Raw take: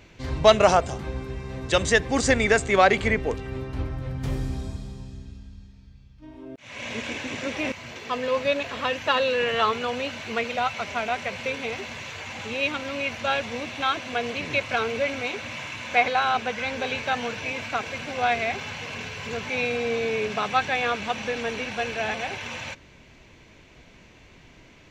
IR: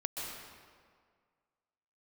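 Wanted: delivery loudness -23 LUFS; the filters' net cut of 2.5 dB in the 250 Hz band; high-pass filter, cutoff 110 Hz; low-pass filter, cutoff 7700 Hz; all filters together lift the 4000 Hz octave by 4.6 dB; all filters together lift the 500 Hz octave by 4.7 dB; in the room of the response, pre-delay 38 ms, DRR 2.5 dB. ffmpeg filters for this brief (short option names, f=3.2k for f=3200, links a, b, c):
-filter_complex "[0:a]highpass=110,lowpass=7.7k,equalizer=f=250:t=o:g=-4.5,equalizer=f=500:t=o:g=6.5,equalizer=f=4k:t=o:g=6,asplit=2[a][b];[1:a]atrim=start_sample=2205,adelay=38[c];[b][c]afir=irnorm=-1:irlink=0,volume=-5dB[d];[a][d]amix=inputs=2:normalize=0,volume=-2.5dB"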